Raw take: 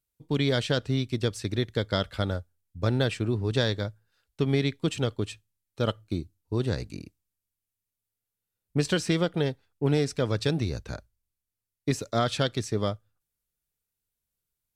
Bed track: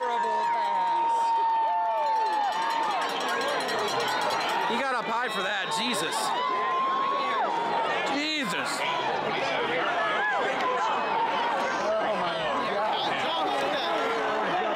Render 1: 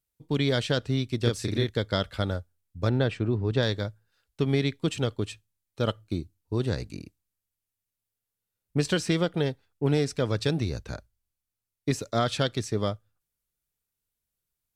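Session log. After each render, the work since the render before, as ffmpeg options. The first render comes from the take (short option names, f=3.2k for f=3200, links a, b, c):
-filter_complex "[0:a]asettb=1/sr,asplit=3[a][b][c];[a]atrim=end=1.224[d];[b]atrim=start=1.22:end=1.7,asetpts=PTS-STARTPTS,afade=t=in:d=0.004:c=qsin,afade=t=out:st=0.476:d=0.004:c=qsin,asplit=2[e][f];[f]adelay=34,volume=-2dB[g];[e][g]amix=inputs=2:normalize=0,atrim=end_sample=21168[h];[c]atrim=start=1.696[i];[d][h]acrossfade=d=0.004:c1=hsin:c2=qsin[j];[j][i]acrossfade=d=0.004:c1=qsin:c2=hsin,asettb=1/sr,asplit=3[k][l][m];[k]atrim=end=2.894[n];[l]atrim=start=2.89:end=3.63,asetpts=PTS-STARTPTS,afade=t=in:d=0.004:c=qsin,afade=t=out:st=0.736:d=0.004:c=qsin,aemphasis=mode=reproduction:type=75fm[o];[m]atrim=start=3.626[p];[n][o]acrossfade=d=0.004:c1=hsin:c2=qsin[q];[q][p]acrossfade=d=0.004:c1=qsin:c2=hsin"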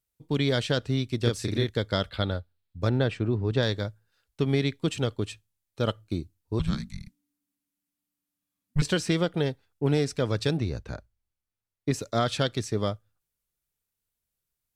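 -filter_complex "[0:a]asettb=1/sr,asplit=3[a][b][c];[a]atrim=end=2.094[d];[b]atrim=start=2.09:end=2.81,asetpts=PTS-STARTPTS,afade=t=in:d=0.004:c=qsin,afade=t=out:st=0.716:d=0.004:c=qsin,highshelf=f=5k:t=q:w=3:g=-6.5[e];[c]atrim=start=2.806[f];[d][e]acrossfade=d=0.004:c1=hsin:c2=qsin[g];[g][f]acrossfade=d=0.004:c1=qsin:c2=hsin,asettb=1/sr,asplit=3[h][i][j];[h]atrim=end=6.594[k];[i]atrim=start=6.59:end=8.82,asetpts=PTS-STARTPTS,afade=t=in:d=0.004:c=qsin,afade=t=out:st=2.226:d=0.004:c=qsin,afreqshift=-290[l];[j]atrim=start=8.816[m];[k][l]acrossfade=d=0.004:c1=hsin:c2=qsin[n];[n][m]acrossfade=d=0.004:c1=qsin:c2=hsin,asettb=1/sr,asplit=3[o][p][q];[o]atrim=end=10.574[r];[p]atrim=start=10.57:end=11.94,asetpts=PTS-STARTPTS,afade=t=in:d=0.004:c=qsin,afade=t=out:st=1.366:d=0.004:c=qsin,highshelf=f=3.8k:g=-8.5[s];[q]atrim=start=11.936[t];[r][s]acrossfade=d=0.004:c1=hsin:c2=qsin[u];[u][t]acrossfade=d=0.004:c1=qsin:c2=hsin"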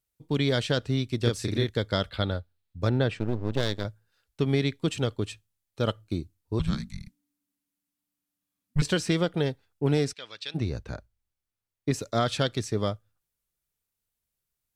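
-filter_complex "[0:a]asettb=1/sr,asplit=3[a][b][c];[a]atrim=end=3.194[d];[b]atrim=start=3.19:end=3.85,asetpts=PTS-STARTPTS,afade=t=in:d=0.004:c=qsin,afade=t=out:st=0.656:d=0.004:c=qsin,aeval=exprs='max(val(0),0)':c=same[e];[c]atrim=start=3.846[f];[d][e]acrossfade=d=0.004:c1=hsin:c2=qsin[g];[g][f]acrossfade=d=0.004:c1=qsin:c2=hsin,asplit=3[h][i][j];[h]afade=t=out:st=10.12:d=0.02[k];[i]bandpass=f=3.1k:t=q:w=1.6,afade=t=in:st=10.12:d=0.02,afade=t=out:st=10.54:d=0.02[l];[j]afade=t=in:st=10.54:d=0.02[m];[k][l][m]amix=inputs=3:normalize=0"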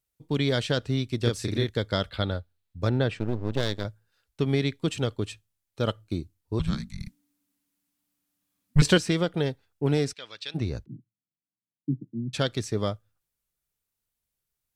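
-filter_complex "[0:a]asettb=1/sr,asplit=3[a][b][c];[a]atrim=end=6.994[d];[b]atrim=start=6.99:end=8.98,asetpts=PTS-STARTPTS,afade=t=in:d=0.004:c=qsin,afade=t=out:st=1.986:d=0.004:c=qsin,acontrast=61[e];[c]atrim=start=8.976[f];[d][e]acrossfade=d=0.004:c1=hsin:c2=qsin[g];[g][f]acrossfade=d=0.004:c1=qsin:c2=hsin,asplit=3[h][i][j];[h]afade=t=out:st=10.84:d=0.02[k];[i]asuperpass=centerf=200:order=12:qfactor=0.95,afade=t=in:st=10.84:d=0.02,afade=t=out:st=12.33:d=0.02[l];[j]afade=t=in:st=12.33:d=0.02[m];[k][l][m]amix=inputs=3:normalize=0"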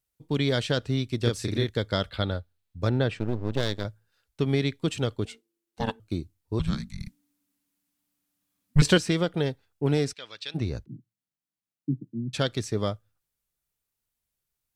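-filter_complex "[0:a]asettb=1/sr,asplit=3[a][b][c];[a]atrim=end=5.254[d];[b]atrim=start=5.25:end=6,asetpts=PTS-STARTPTS,afade=t=in:d=0.004:c=qsin,afade=t=out:st=0.746:d=0.004:c=qsin,aeval=exprs='val(0)*sin(2*PI*340*n/s)':c=same[e];[c]atrim=start=5.996[f];[d][e]acrossfade=d=0.004:c1=hsin:c2=qsin[g];[g][f]acrossfade=d=0.004:c1=qsin:c2=hsin"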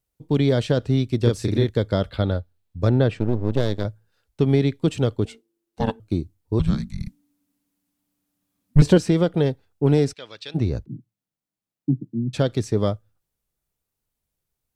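-filter_complex "[0:a]acrossover=split=880[a][b];[a]acontrast=82[c];[b]alimiter=limit=-23.5dB:level=0:latency=1:release=31[d];[c][d]amix=inputs=2:normalize=0"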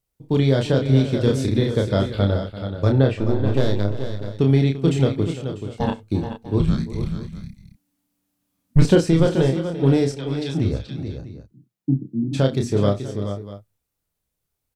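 -filter_complex "[0:a]asplit=2[a][b];[b]adelay=30,volume=-4.5dB[c];[a][c]amix=inputs=2:normalize=0,aecho=1:1:65|342|430|645:0.1|0.178|0.355|0.141"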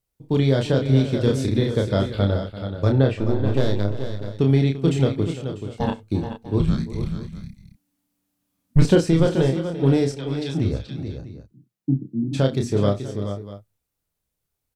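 -af "volume=-1dB"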